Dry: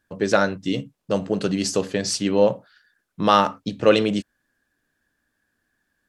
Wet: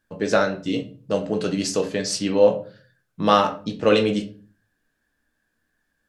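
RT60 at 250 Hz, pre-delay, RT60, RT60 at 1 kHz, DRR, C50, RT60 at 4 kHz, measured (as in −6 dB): 0.55 s, 4 ms, 0.40 s, 0.35 s, 3.5 dB, 13.0 dB, 0.30 s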